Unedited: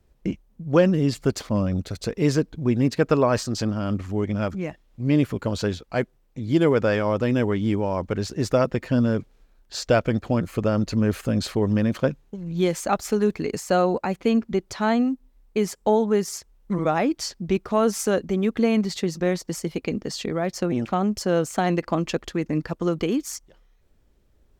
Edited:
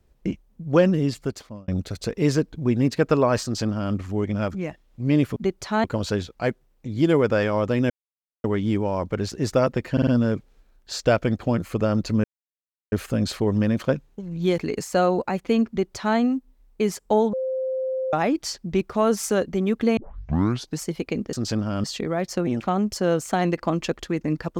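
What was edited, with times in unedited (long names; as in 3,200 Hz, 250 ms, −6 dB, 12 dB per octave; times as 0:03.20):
0:00.93–0:01.68: fade out
0:03.43–0:03.94: duplicate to 0:20.09
0:07.42: splice in silence 0.54 s
0:08.90: stutter 0.05 s, 4 plays
0:11.07: splice in silence 0.68 s
0:12.73–0:13.34: remove
0:14.45–0:14.93: duplicate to 0:05.36
0:16.09–0:16.89: beep over 522 Hz −23 dBFS
0:18.73: tape start 0.84 s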